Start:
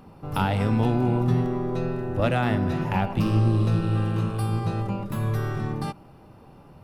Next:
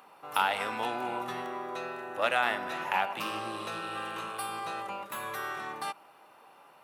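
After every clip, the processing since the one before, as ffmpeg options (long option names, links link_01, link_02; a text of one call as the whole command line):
ffmpeg -i in.wav -af "highpass=900,equalizer=frequency=5000:width=3.5:gain=-7,volume=3dB" out.wav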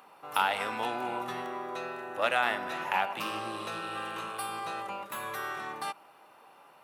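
ffmpeg -i in.wav -af anull out.wav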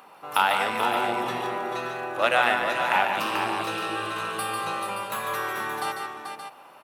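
ffmpeg -i in.wav -af "aecho=1:1:147|436|574:0.501|0.422|0.335,volume=5.5dB" out.wav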